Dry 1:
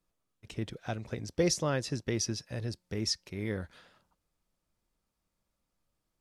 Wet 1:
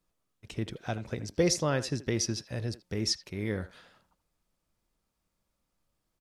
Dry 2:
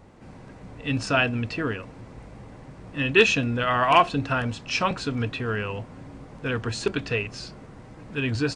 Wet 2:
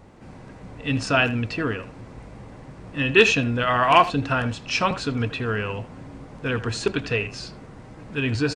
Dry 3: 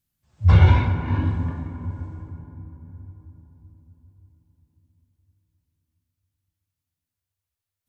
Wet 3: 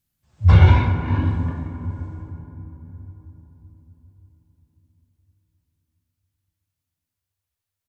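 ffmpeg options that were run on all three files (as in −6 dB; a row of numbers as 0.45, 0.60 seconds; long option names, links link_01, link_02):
-filter_complex "[0:a]asplit=2[link_01][link_02];[link_02]adelay=80,highpass=300,lowpass=3400,asoftclip=type=hard:threshold=-13dB,volume=-14dB[link_03];[link_01][link_03]amix=inputs=2:normalize=0,volume=2dB"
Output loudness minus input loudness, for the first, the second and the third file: +2.0, +2.0, +2.0 LU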